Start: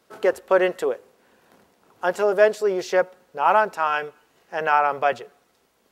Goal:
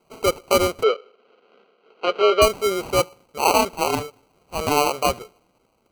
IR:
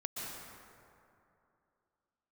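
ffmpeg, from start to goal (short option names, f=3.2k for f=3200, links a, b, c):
-filter_complex "[0:a]acrusher=samples=25:mix=1:aa=0.000001,asettb=1/sr,asplit=3[a][b][c];[a]atrim=end=0.834[d];[b]atrim=start=0.83:end=2.42,asetpts=PTS-STARTPTS,afade=t=in:d=0.004:c=qsin,afade=t=out:st=1.586:d=0.004:c=qsin,highpass=f=250:w=0.5412,highpass=f=250:w=1.3066,equalizer=f=300:t=q:w=4:g=-9,equalizer=f=440:t=q:w=4:g=9,equalizer=f=900:t=q:w=4:g=-7,equalizer=f=1.4k:t=q:w=4:g=8,equalizer=f=3.1k:t=q:w=4:g=5,lowpass=f=4.1k:w=0.5412,lowpass=f=4.1k:w=1.3066[e];[c]atrim=start=2.416[f];[d][e]acrossfade=d=0.004:c1=hsin:c2=qsin[g];[g][f]acrossfade=d=0.004:c1=qsin:c2=hsin"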